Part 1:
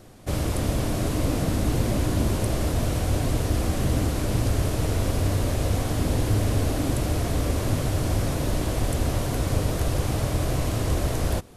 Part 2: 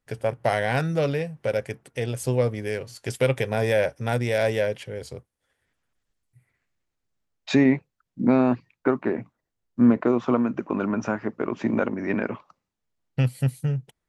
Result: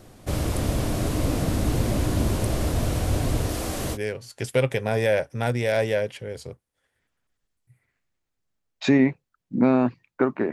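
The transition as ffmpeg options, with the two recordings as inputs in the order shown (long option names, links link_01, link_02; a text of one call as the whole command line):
ffmpeg -i cue0.wav -i cue1.wav -filter_complex "[0:a]asettb=1/sr,asplit=3[link_01][link_02][link_03];[link_01]atrim=end=3.494[link_04];[link_02]atrim=start=3.49:end=3.98,asetpts=PTS-STARTPTS,afade=type=in:duration=0.004:curve=qsin,afade=type=out:start_time=0.486:duration=0.004:curve=qsin,bass=frequency=250:gain=-8,treble=frequency=4000:gain=3[link_05];[link_03]atrim=start=3.976[link_06];[link_04][link_05]acrossfade=duration=0.004:curve1=hsin:curve2=qsin[link_07];[link_07][link_06]acrossfade=duration=0.004:curve1=qsin:curve2=hsin,apad=whole_dur=10.52,atrim=end=10.52,atrim=end=3.98,asetpts=PTS-STARTPTS[link_08];[1:a]atrim=start=2.58:end=9.18,asetpts=PTS-STARTPTS[link_09];[link_08][link_09]acrossfade=duration=0.06:curve1=tri:curve2=tri" out.wav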